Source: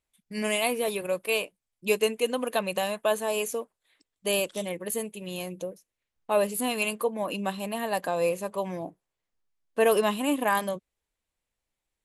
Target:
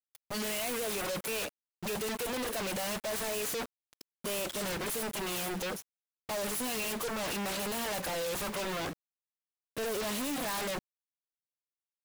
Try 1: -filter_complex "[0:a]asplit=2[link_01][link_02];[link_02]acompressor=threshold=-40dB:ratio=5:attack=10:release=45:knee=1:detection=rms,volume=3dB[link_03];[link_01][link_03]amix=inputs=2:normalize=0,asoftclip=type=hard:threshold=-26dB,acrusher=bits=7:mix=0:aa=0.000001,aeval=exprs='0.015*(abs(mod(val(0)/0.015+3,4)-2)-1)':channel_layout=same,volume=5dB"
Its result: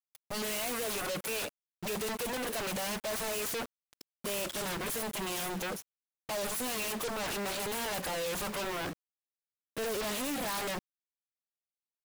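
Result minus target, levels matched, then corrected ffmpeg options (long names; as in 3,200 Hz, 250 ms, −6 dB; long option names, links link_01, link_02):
downward compressor: peak gain reduction +6.5 dB
-filter_complex "[0:a]asplit=2[link_01][link_02];[link_02]acompressor=threshold=-32dB:ratio=5:attack=10:release=45:knee=1:detection=rms,volume=3dB[link_03];[link_01][link_03]amix=inputs=2:normalize=0,asoftclip=type=hard:threshold=-26dB,acrusher=bits=7:mix=0:aa=0.000001,aeval=exprs='0.015*(abs(mod(val(0)/0.015+3,4)-2)-1)':channel_layout=same,volume=5dB"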